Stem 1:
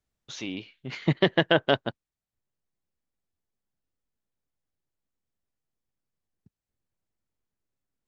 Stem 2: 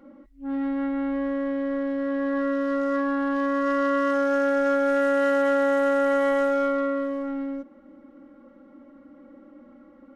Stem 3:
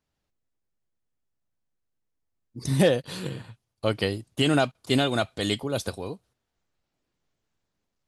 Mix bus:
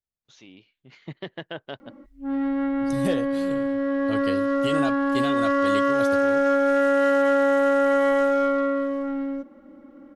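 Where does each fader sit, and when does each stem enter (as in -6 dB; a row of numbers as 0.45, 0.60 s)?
-14.0, +2.0, -7.5 dB; 0.00, 1.80, 0.25 s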